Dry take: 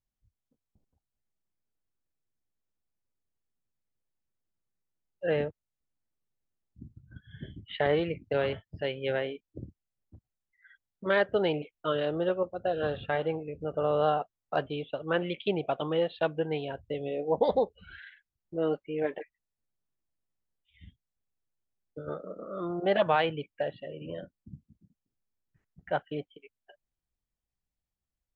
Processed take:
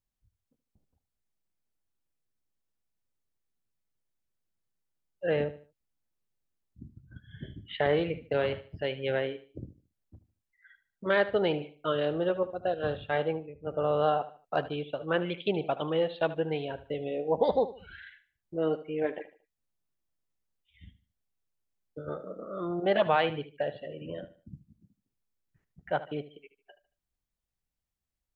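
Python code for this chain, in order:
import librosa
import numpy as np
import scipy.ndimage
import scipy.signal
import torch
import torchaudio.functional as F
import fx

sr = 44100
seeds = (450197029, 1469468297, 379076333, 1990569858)

y = fx.echo_feedback(x, sr, ms=75, feedback_pct=33, wet_db=-15.0)
y = fx.band_widen(y, sr, depth_pct=100, at=(12.74, 13.67))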